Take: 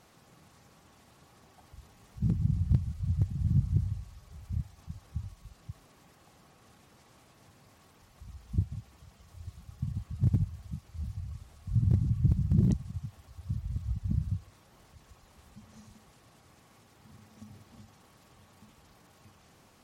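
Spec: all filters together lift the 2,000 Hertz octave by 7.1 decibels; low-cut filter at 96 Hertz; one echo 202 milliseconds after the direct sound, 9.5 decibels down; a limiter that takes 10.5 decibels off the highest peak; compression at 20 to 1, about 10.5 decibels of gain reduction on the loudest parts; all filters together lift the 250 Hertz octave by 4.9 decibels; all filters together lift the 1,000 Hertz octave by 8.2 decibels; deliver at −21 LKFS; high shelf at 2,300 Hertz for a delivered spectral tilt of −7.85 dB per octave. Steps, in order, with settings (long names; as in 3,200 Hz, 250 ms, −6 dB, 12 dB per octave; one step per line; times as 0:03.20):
high-pass filter 96 Hz
parametric band 250 Hz +8.5 dB
parametric band 1,000 Hz +8.5 dB
parametric band 2,000 Hz +8 dB
high-shelf EQ 2,300 Hz −4 dB
downward compressor 20 to 1, threshold −28 dBFS
brickwall limiter −30.5 dBFS
single-tap delay 202 ms −9.5 dB
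level +23 dB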